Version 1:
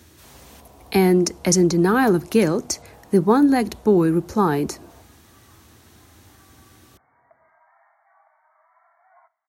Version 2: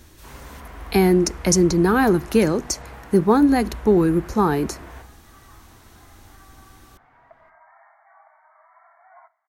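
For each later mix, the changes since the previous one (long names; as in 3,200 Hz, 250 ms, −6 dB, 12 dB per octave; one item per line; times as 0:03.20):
first sound: remove transistor ladder low-pass 960 Hz, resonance 30%
second sound +6.0 dB
master: remove high-pass filter 73 Hz 24 dB per octave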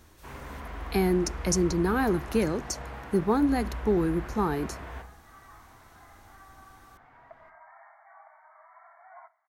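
speech −8.5 dB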